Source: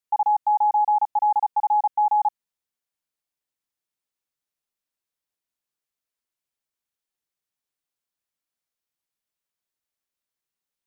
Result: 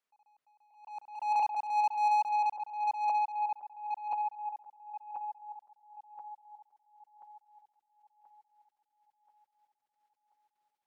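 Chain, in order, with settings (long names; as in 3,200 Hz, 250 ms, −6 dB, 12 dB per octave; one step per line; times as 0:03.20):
feedback delay that plays each chunk backwards 516 ms, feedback 65%, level −7.5 dB
mid-hump overdrive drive 25 dB, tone 1,000 Hz, clips at −11 dBFS
level that may rise only so fast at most 100 dB per second
level −8.5 dB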